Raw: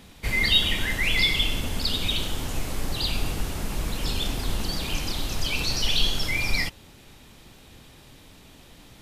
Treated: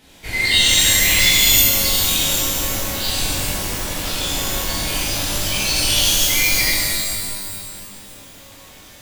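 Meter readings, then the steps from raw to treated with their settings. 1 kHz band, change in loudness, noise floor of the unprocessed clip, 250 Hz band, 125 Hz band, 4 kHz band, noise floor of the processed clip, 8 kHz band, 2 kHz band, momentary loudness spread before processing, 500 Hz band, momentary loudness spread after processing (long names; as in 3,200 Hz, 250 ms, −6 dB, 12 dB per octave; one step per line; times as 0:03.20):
+8.0 dB, +10.0 dB, −50 dBFS, +4.5 dB, +3.5 dB, +8.5 dB, −43 dBFS, +19.0 dB, +7.5 dB, 11 LU, +7.5 dB, 12 LU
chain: low-shelf EQ 370 Hz −7.5 dB
notch filter 1,200 Hz, Q 6.5
reverb with rising layers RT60 2 s, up +12 semitones, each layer −2 dB, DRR −9 dB
level −2.5 dB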